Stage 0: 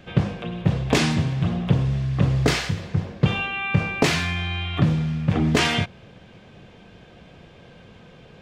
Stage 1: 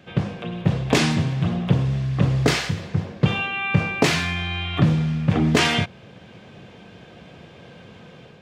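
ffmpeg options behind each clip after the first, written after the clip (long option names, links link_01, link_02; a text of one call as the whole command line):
ffmpeg -i in.wav -af "highpass=85,dynaudnorm=framelen=250:gausssize=3:maxgain=5.5dB,volume=-2dB" out.wav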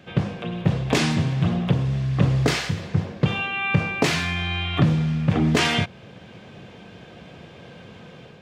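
ffmpeg -i in.wav -af "alimiter=limit=-8dB:level=0:latency=1:release=478,volume=1dB" out.wav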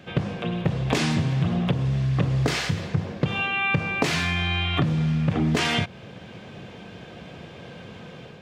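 ffmpeg -i in.wav -af "acompressor=threshold=-21dB:ratio=6,volume=2dB" out.wav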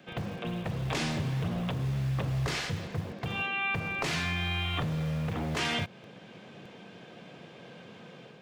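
ffmpeg -i in.wav -filter_complex "[0:a]acrossover=split=120|620|4600[link_01][link_02][link_03][link_04];[link_01]acrusher=bits=6:mix=0:aa=0.000001[link_05];[link_02]aeval=exprs='0.0631*(abs(mod(val(0)/0.0631+3,4)-2)-1)':channel_layout=same[link_06];[link_05][link_06][link_03][link_04]amix=inputs=4:normalize=0,volume=-6.5dB" out.wav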